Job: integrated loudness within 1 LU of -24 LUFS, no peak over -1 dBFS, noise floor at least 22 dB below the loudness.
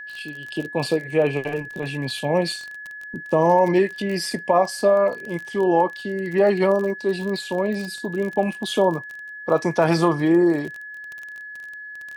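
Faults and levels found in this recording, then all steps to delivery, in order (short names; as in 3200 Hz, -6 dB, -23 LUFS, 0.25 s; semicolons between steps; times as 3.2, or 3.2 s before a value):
ticks 30/s; steady tone 1700 Hz; tone level -34 dBFS; loudness -21.5 LUFS; peak -5.0 dBFS; loudness target -24.0 LUFS
-> de-click; notch 1700 Hz, Q 30; gain -2.5 dB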